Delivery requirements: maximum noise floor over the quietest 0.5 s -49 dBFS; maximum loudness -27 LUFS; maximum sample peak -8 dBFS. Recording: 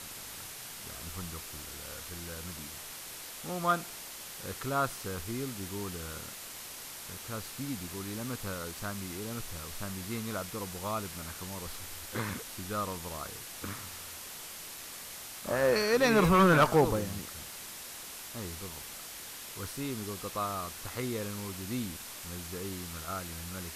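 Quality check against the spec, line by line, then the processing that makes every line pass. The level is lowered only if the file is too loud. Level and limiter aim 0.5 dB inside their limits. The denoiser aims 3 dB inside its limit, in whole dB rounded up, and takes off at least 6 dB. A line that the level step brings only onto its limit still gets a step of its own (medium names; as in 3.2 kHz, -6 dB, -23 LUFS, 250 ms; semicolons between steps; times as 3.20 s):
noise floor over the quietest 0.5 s -45 dBFS: fail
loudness -34.0 LUFS: pass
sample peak -15.5 dBFS: pass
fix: noise reduction 7 dB, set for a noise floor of -45 dBFS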